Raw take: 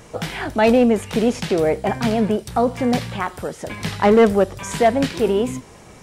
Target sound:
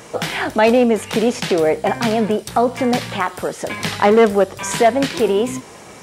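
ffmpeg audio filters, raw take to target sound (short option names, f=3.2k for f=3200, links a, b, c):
-filter_complex "[0:a]highpass=f=280:p=1,asplit=2[a][b];[b]acompressor=threshold=-25dB:ratio=6,volume=0dB[c];[a][c]amix=inputs=2:normalize=0,volume=1dB"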